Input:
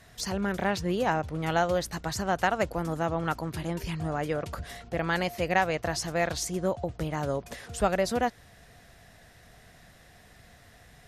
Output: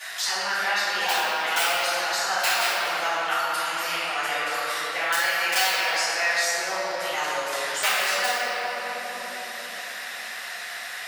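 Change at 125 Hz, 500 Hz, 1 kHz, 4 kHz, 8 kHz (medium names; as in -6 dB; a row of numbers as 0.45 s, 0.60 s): under -20 dB, -2.0 dB, +5.0 dB, +14.0 dB, +10.0 dB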